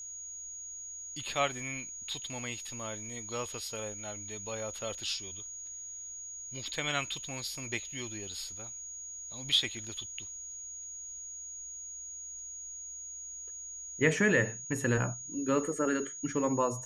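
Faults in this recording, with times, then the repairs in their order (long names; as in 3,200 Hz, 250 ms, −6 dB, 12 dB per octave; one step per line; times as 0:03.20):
whistle 6,700 Hz −41 dBFS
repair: notch filter 6,700 Hz, Q 30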